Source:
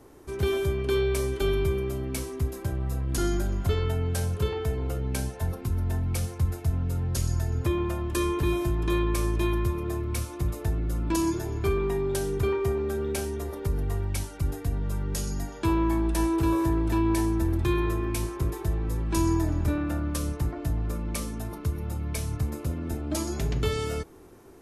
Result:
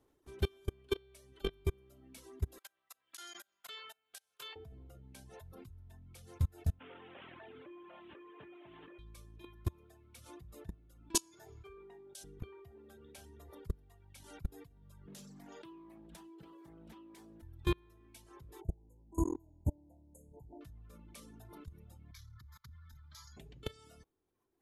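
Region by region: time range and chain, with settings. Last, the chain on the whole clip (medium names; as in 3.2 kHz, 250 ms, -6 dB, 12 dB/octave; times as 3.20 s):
2.58–4.56 s: high-pass 1.3 kHz + compression 12:1, threshold -40 dBFS
6.79–8.99 s: one-bit delta coder 16 kbps, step -39.5 dBFS + high-pass 350 Hz
11.15–12.24 s: low-pass 9.1 kHz + tone controls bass -11 dB, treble +11 dB + three bands expanded up and down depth 100%
15.07–17.43 s: resonant low shelf 130 Hz -9.5 dB, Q 3 + compression 3:1, threshold -29 dBFS + loudspeaker Doppler distortion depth 0.26 ms
18.61–20.61 s: brick-wall FIR band-stop 1–6.4 kHz + peaking EQ 11 kHz -5.5 dB 1.5 oct
22.11–23.37 s: Chebyshev band-stop 130–860 Hz, order 3 + transient shaper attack -10 dB, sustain +1 dB + static phaser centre 2.7 kHz, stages 6
whole clip: level held to a coarse grid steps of 23 dB; reverb removal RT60 1.8 s; peaking EQ 3.4 kHz +6 dB 0.53 oct; trim -4 dB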